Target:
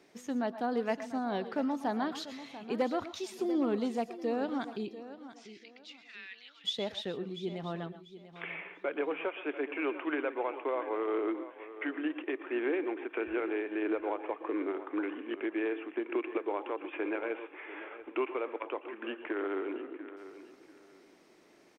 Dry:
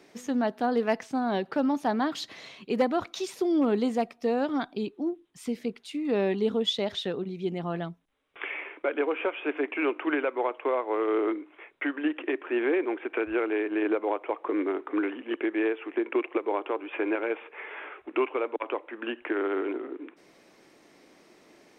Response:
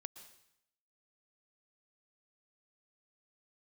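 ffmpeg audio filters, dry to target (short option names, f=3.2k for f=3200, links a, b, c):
-filter_complex "[0:a]asplit=3[a][b][c];[a]afade=t=out:st=4.93:d=0.02[d];[b]asuperpass=centerf=3100:order=8:qfactor=0.66,afade=t=in:st=4.93:d=0.02,afade=t=out:st=6.64:d=0.02[e];[c]afade=t=in:st=6.64:d=0.02[f];[d][e][f]amix=inputs=3:normalize=0,aecho=1:1:691|1382|2073:0.2|0.0499|0.0125[g];[1:a]atrim=start_sample=2205,atrim=end_sample=6174[h];[g][h]afir=irnorm=-1:irlink=0,volume=-1dB"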